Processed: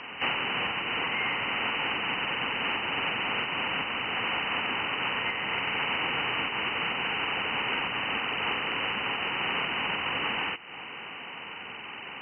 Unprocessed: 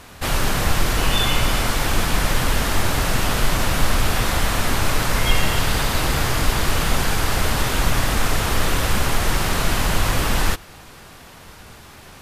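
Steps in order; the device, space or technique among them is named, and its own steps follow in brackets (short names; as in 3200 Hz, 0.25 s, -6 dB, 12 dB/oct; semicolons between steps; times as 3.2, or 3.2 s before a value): hearing aid with frequency lowering (nonlinear frequency compression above 1800 Hz 4:1; compressor 4:1, threshold -26 dBFS, peak gain reduction 14.5 dB; speaker cabinet 280–6600 Hz, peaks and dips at 350 Hz -3 dB, 620 Hz -7 dB, 890 Hz +3 dB, 2000 Hz -4 dB, 5200 Hz +10 dB); gain +2.5 dB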